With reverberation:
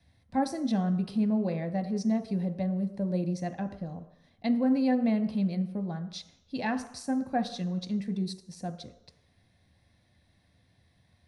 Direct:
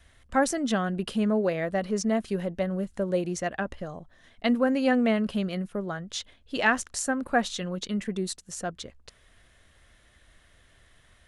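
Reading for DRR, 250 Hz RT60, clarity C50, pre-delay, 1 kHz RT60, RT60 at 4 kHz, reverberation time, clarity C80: 7.0 dB, 0.65 s, 12.0 dB, 3 ms, 0.85 s, 0.80 s, 0.80 s, 14.0 dB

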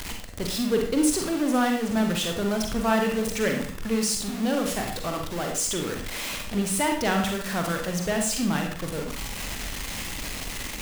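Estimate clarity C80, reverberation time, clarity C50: 8.5 dB, 0.50 s, 4.5 dB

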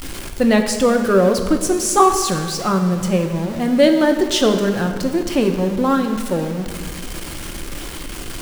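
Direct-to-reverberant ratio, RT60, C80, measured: 5.0 dB, 1.7 s, 9.0 dB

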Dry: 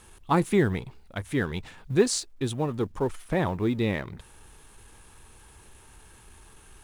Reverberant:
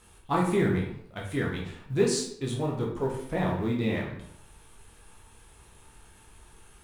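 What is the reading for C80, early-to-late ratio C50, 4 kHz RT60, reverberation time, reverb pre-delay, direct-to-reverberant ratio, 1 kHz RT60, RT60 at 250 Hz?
8.0 dB, 5.0 dB, 0.45 s, 0.70 s, 11 ms, -2.5 dB, 0.70 s, 0.70 s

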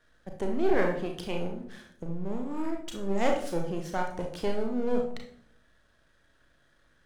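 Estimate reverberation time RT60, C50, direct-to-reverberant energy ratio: 0.70 s, 6.5 dB, 1.5 dB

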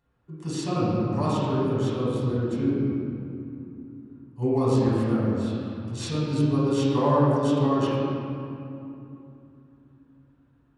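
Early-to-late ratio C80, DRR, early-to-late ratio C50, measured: -2.0 dB, -10.0 dB, -4.0 dB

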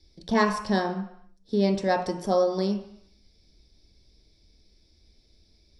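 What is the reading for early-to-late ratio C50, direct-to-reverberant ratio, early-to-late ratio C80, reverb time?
8.5 dB, 3.0 dB, 11.0 dB, 0.70 s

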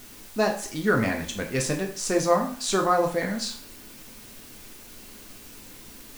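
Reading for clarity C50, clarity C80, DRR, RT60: 9.0 dB, 13.5 dB, 1.0 dB, 0.50 s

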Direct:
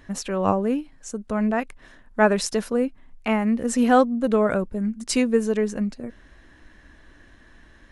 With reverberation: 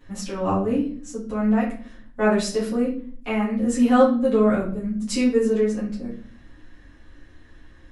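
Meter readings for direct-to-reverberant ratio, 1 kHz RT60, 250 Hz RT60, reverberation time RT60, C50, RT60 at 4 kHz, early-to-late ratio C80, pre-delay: -9.0 dB, 0.40 s, 0.90 s, 0.50 s, 7.0 dB, 0.40 s, 11.5 dB, 7 ms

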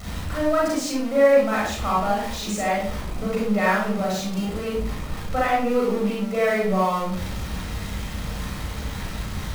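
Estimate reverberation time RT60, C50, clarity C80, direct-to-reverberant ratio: 0.55 s, 0.0 dB, 5.5 dB, -5.0 dB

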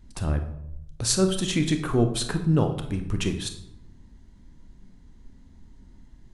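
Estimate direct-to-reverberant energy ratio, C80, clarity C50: 6.0 dB, 12.5 dB, 9.0 dB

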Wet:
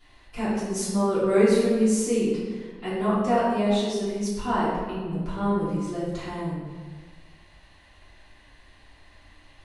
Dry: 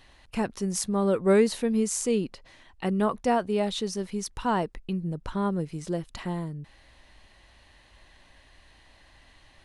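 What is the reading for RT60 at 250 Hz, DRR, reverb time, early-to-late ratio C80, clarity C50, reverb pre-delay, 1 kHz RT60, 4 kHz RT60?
1.6 s, -12.5 dB, 1.5 s, 1.5 dB, -1.0 dB, 3 ms, 1.4 s, 0.90 s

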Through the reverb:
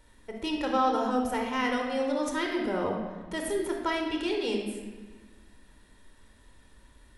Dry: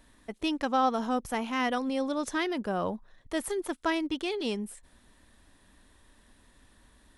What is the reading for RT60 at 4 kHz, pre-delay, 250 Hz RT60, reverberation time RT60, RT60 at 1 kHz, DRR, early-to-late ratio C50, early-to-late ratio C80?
1.0 s, 23 ms, 1.9 s, 1.3 s, 1.2 s, 1.5 dB, 3.0 dB, 5.5 dB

